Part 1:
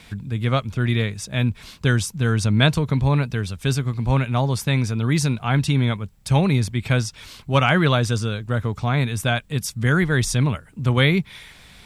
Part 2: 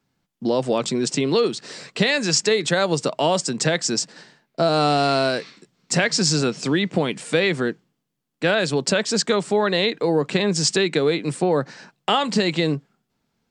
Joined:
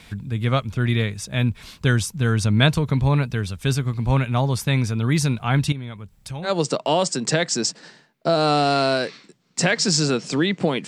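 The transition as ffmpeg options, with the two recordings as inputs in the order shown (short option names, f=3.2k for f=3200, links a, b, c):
-filter_complex "[0:a]asettb=1/sr,asplit=3[a][b][c];[a]atrim=end=5.724[d];[b]atrim=start=5.72:end=6.52,asetpts=PTS-STARTPTS,afade=t=in:d=0.004:c=qsin,afade=t=out:st=0.796:d=0.004:c=qsin,acompressor=threshold=-35dB:ratio=2.5:attack=3.2:release=140:knee=1:detection=peak[e];[c]atrim=start=6.516[f];[d][e]acrossfade=d=0.004:c1=hsin:c2=qsin[g];[g][f]acrossfade=d=0.004:c1=qsin:c2=hsin,apad=whole_dur=10.87,atrim=end=10.87,atrim=end=6.52,asetpts=PTS-STARTPTS[h];[1:a]atrim=start=2.75:end=7.2,asetpts=PTS-STARTPTS[i];[h][i]acrossfade=d=0.1:c1=tri:c2=tri"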